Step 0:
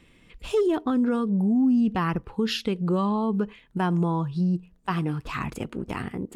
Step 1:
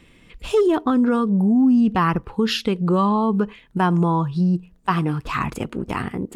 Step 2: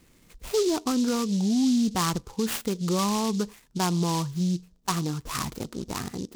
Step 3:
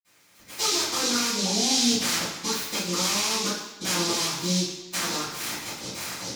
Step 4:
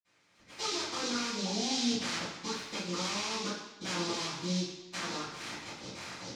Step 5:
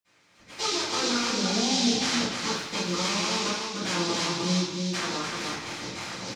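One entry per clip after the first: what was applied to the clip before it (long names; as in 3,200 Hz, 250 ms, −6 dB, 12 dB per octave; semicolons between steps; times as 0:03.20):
dynamic equaliser 1,100 Hz, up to +4 dB, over −42 dBFS, Q 1.7; level +5 dB
short delay modulated by noise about 4,900 Hz, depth 0.091 ms; level −7 dB
ceiling on every frequency bin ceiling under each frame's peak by 24 dB; convolution reverb RT60 1.2 s, pre-delay 47 ms; level +4.5 dB
high-frequency loss of the air 97 metres; level −6.5 dB
single-tap delay 300 ms −4.5 dB; level +6.5 dB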